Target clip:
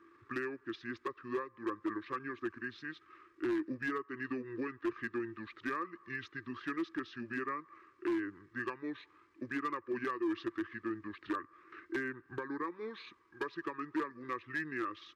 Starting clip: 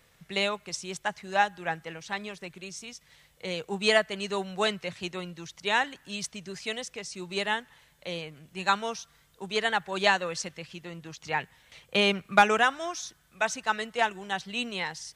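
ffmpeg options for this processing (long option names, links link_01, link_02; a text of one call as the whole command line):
ffmpeg -i in.wav -filter_complex "[0:a]asplit=2[link_01][link_02];[link_02]alimiter=limit=-16.5dB:level=0:latency=1:release=363,volume=0dB[link_03];[link_01][link_03]amix=inputs=2:normalize=0,acompressor=threshold=-28dB:ratio=8,asplit=3[link_04][link_05][link_06];[link_04]bandpass=frequency=530:width_type=q:width=8,volume=0dB[link_07];[link_05]bandpass=frequency=1840:width_type=q:width=8,volume=-6dB[link_08];[link_06]bandpass=frequency=2480:width_type=q:width=8,volume=-9dB[link_09];[link_07][link_08][link_09]amix=inputs=3:normalize=0,volume=36dB,asoftclip=hard,volume=-36dB,asetrate=28595,aresample=44100,atempo=1.54221,volume=6.5dB" out.wav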